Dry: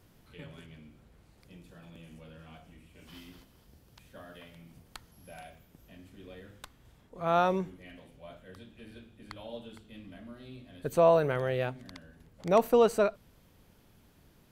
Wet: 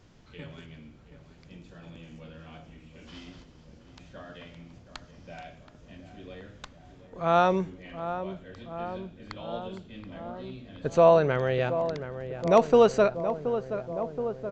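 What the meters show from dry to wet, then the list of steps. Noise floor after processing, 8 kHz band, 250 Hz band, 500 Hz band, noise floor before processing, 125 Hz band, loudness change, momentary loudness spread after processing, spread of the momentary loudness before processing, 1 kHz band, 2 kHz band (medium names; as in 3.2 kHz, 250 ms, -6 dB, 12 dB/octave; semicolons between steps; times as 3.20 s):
-54 dBFS, no reading, +4.5 dB, +4.5 dB, -62 dBFS, +5.0 dB, +2.0 dB, 25 LU, 21 LU, +4.5 dB, +4.0 dB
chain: on a send: filtered feedback delay 725 ms, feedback 80%, low-pass 1.4 kHz, level -10 dB; on the sum: resampled via 16 kHz; trim +4 dB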